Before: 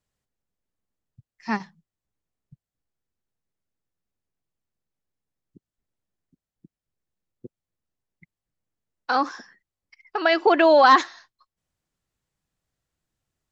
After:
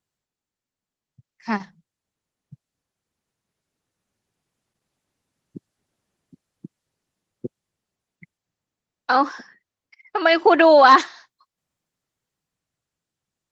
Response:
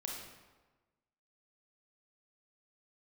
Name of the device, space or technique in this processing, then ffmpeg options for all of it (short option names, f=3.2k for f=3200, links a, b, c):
video call: -filter_complex "[0:a]asplit=3[a][b][c];[a]afade=t=out:st=9.12:d=0.02[d];[b]lowpass=5.6k,afade=t=in:st=9.12:d=0.02,afade=t=out:st=10.19:d=0.02[e];[c]afade=t=in:st=10.19:d=0.02[f];[d][e][f]amix=inputs=3:normalize=0,highpass=100,dynaudnorm=f=620:g=7:m=16dB,volume=-1dB" -ar 48000 -c:a libopus -b:a 16k